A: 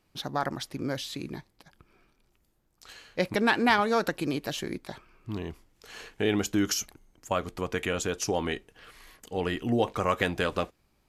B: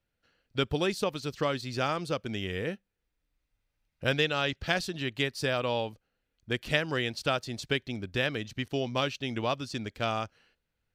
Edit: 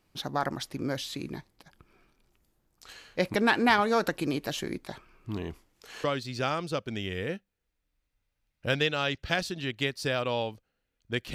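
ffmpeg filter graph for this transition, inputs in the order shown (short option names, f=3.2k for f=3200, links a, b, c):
-filter_complex "[0:a]asettb=1/sr,asplit=3[a][b][c];[a]atrim=end=5.584[d];[b]atrim=start=5.58:end=6.04,asetpts=PTS-STARTPTS,afade=t=in:d=0.004:c=qsin,afade=t=out:st=0.456:d=0.004:c=qsin,lowshelf=f=180:g=-6.5[e];[c]atrim=start=6.036[f];[d][e]acrossfade=d=0.004:c1=hsin:c2=qsin[g];[g][f]acrossfade=d=0.004:c1=qsin:c2=hsin,apad=whole_dur=11.34,atrim=end=11.34,atrim=end=6.042[h];[1:a]atrim=start=1.418:end=6.72[i];[h][i]acrossfade=d=0.004:c1=hsin:c2=hsin"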